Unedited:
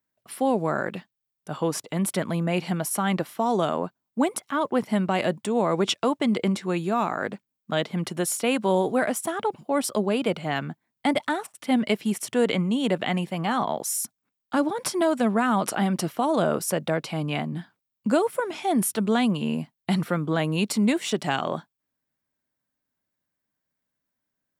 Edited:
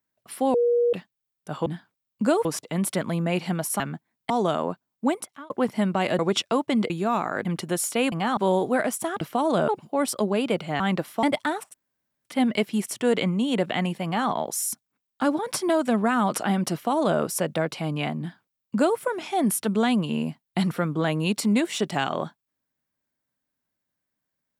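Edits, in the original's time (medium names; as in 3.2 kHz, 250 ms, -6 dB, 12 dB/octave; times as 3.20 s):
0.54–0.93 s: bleep 478 Hz -17.5 dBFS
3.01–3.44 s: swap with 10.56–11.06 s
4.19–4.64 s: fade out
5.33–5.71 s: delete
6.42–6.76 s: delete
7.31–7.93 s: delete
11.57 s: insert room tone 0.51 s
13.36–13.61 s: copy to 8.60 s
16.05–16.52 s: copy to 9.44 s
17.51–18.30 s: copy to 1.66 s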